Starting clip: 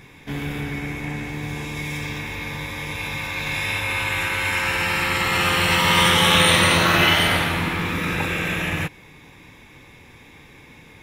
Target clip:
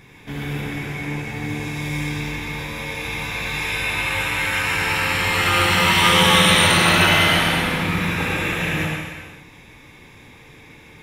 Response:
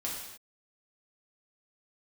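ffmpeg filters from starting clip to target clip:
-filter_complex "[0:a]asplit=2[link_01][link_02];[1:a]atrim=start_sample=2205,asetrate=28224,aresample=44100,adelay=75[link_03];[link_02][link_03]afir=irnorm=-1:irlink=0,volume=-5.5dB[link_04];[link_01][link_04]amix=inputs=2:normalize=0,volume=-2dB"

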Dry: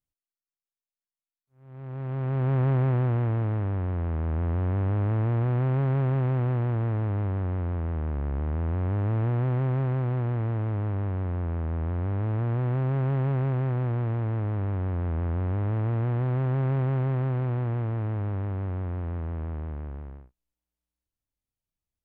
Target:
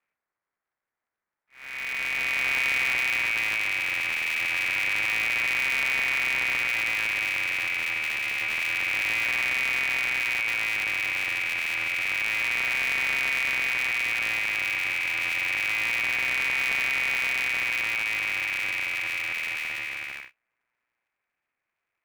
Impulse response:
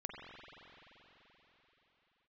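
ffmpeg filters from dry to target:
-filter_complex "[0:a]asplit=2[link_01][link_02];[link_02]highpass=frequency=720:poles=1,volume=28dB,asoftclip=type=tanh:threshold=-18.5dB[link_03];[link_01][link_03]amix=inputs=2:normalize=0,lowpass=frequency=1200:poles=1,volume=-6dB,lowpass=frequency=2100:width_type=q:width=0.5098,lowpass=frequency=2100:width_type=q:width=0.6013,lowpass=frequency=2100:width_type=q:width=0.9,lowpass=frequency=2100:width_type=q:width=2.563,afreqshift=-2500,aeval=exprs='val(0)*sgn(sin(2*PI*110*n/s))':channel_layout=same"

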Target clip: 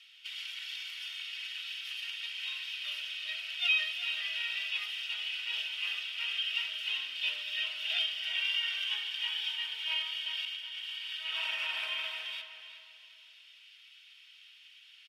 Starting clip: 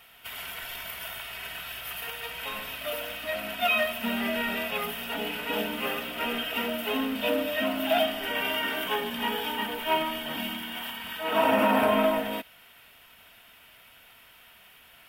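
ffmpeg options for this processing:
ffmpeg -i in.wav -filter_complex "[0:a]asuperpass=centerf=4000:order=4:qfactor=1.2,asettb=1/sr,asplit=3[link_01][link_02][link_03];[link_01]atrim=end=10.454[link_04];[link_02]atrim=start=10.45:end=10.91,asetpts=PTS-STARTPTS,afade=type=in:duration=0.004:curve=qsin,afade=type=out:start_time=0.456:duration=0.004:curve=qsin,agate=range=-33dB:threshold=-36dB:ratio=3:detection=peak[link_05];[link_03]atrim=start=10.906[link_06];[link_04][link_05]acrossfade=duration=0.004:curve1=hsin:curve2=qsin[link_07];[link_07][link_06]acrossfade=duration=0.004:curve1=qsin:curve2=hsin,asplit=2[link_08][link_09];[link_09]adelay=370,lowpass=frequency=4600:poles=1,volume=-9dB,asplit=2[link_10][link_11];[link_11]adelay=370,lowpass=frequency=4600:poles=1,volume=0.37,asplit=2[link_12][link_13];[link_13]adelay=370,lowpass=frequency=4600:poles=1,volume=0.37,asplit=2[link_14][link_15];[link_15]adelay=370,lowpass=frequency=4600:poles=1,volume=0.37[link_16];[link_08][link_10][link_12][link_14][link_16]amix=inputs=5:normalize=0,volume=2dB" out.wav

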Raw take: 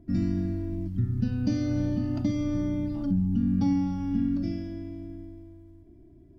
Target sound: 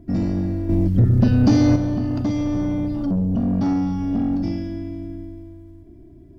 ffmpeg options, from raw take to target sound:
ffmpeg -i in.wav -filter_complex "[0:a]asoftclip=type=tanh:threshold=-24dB,asettb=1/sr,asplit=3[link_01][link_02][link_03];[link_01]atrim=end=0.694[link_04];[link_02]atrim=start=0.69:end=1.76,asetpts=PTS-STARTPTS,afade=type=in:duration=0.004:curve=qsin,afade=type=out:start_time=1.066:duration=0.004:curve=qsin,acontrast=84[link_05];[link_03]atrim=start=1.756[link_06];[link_04][link_05]acrossfade=duration=0.004:curve1=hsin:curve2=qsin[link_07];[link_07][link_06]acrossfade=duration=0.004:curve1=qsin:curve2=hsin,volume=8dB" out.wav

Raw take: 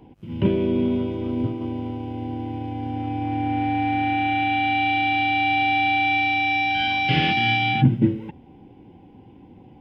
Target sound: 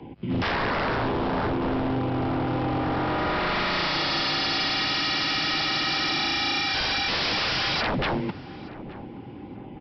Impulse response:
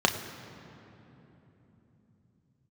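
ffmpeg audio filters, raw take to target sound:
-filter_complex "[0:a]bandreject=frequency=61.78:width_type=h:width=4,bandreject=frequency=123.56:width_type=h:width=4,afreqshift=15,equalizer=frequency=2100:width_type=o:width=0.42:gain=3.5,aresample=11025,aeval=exprs='0.0422*(abs(mod(val(0)/0.0422+3,4)-2)-1)':channel_layout=same,aresample=44100,acontrast=74,asplit=2[link_01][link_02];[link_02]adelay=873,lowpass=frequency=1200:poles=1,volume=-15.5dB,asplit=2[link_03][link_04];[link_04]adelay=873,lowpass=frequency=1200:poles=1,volume=0.41,asplit=2[link_05][link_06];[link_06]adelay=873,lowpass=frequency=1200:poles=1,volume=0.41,asplit=2[link_07][link_08];[link_08]adelay=873,lowpass=frequency=1200:poles=1,volume=0.41[link_09];[link_03][link_05][link_07][link_09]amix=inputs=4:normalize=0[link_10];[link_01][link_10]amix=inputs=2:normalize=0"

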